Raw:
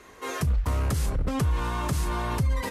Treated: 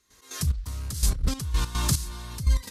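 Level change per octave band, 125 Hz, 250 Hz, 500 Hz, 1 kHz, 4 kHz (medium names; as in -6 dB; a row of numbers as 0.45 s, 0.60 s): -1.5 dB, -4.5 dB, -10.5 dB, -8.0 dB, +5.5 dB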